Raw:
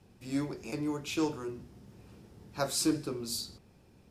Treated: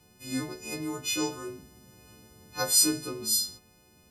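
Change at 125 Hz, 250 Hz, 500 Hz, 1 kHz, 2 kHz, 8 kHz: −2.0, −0.5, −0.5, +2.0, +6.5, +12.5 decibels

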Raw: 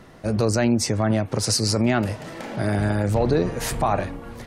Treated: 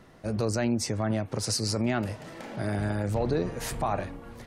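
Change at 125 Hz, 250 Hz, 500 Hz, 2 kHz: −7.0, −7.0, −7.0, −7.0 decibels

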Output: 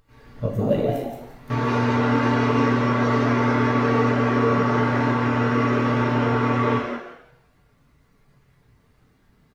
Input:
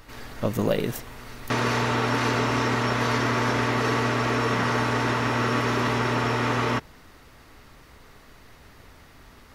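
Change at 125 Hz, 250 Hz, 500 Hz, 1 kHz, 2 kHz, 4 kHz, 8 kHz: +4.5 dB, +6.5 dB, +4.0 dB, +2.0 dB, −0.5 dB, −5.5 dB, can't be measured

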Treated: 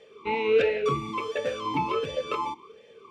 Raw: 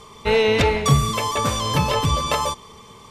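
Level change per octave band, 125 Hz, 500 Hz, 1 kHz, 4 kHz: −18.5, −4.0, −7.5, −14.0 decibels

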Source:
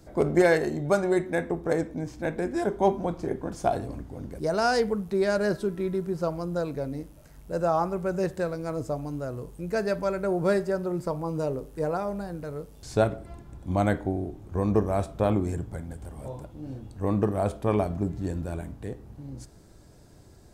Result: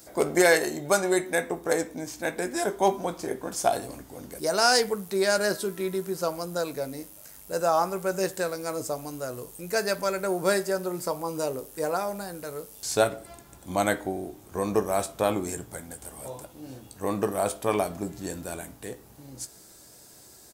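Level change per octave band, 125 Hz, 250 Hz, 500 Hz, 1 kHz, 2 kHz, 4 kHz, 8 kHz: −8.5, −3.5, 0.0, +2.0, +4.5, +10.0, +14.0 decibels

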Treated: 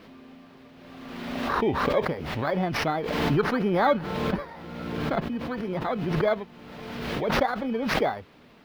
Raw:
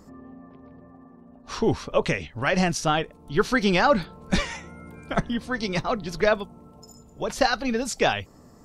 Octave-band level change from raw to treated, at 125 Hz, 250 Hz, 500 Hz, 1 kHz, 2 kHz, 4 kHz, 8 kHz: 0.0, −0.5, −1.0, −1.0, −4.0, −5.0, −12.0 decibels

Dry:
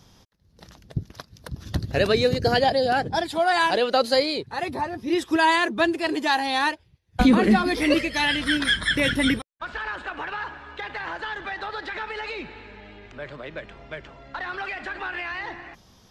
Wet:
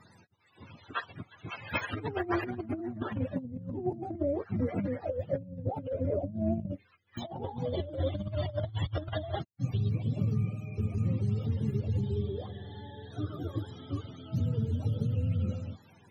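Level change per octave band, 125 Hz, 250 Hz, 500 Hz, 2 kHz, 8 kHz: +4.0 dB, −9.5 dB, −10.5 dB, −19.5 dB, below −20 dB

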